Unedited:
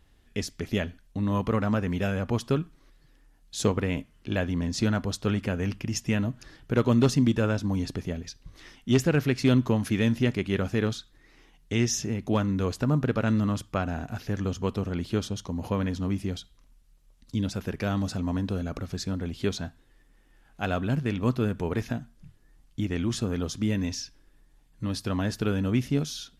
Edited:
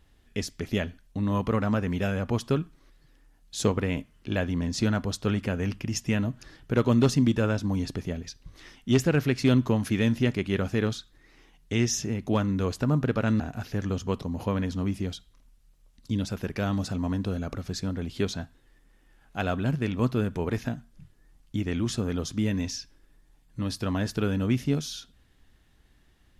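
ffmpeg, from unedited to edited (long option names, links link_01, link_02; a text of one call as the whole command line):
ffmpeg -i in.wav -filter_complex "[0:a]asplit=3[link_01][link_02][link_03];[link_01]atrim=end=13.402[link_04];[link_02]atrim=start=13.948:end=14.772[link_05];[link_03]atrim=start=15.458[link_06];[link_04][link_05]acrossfade=duration=0.004:curve1=hsin:curve2=hsin[link_07];[link_07][link_06]acrossfade=duration=0.004:curve1=hsin:curve2=hsin" out.wav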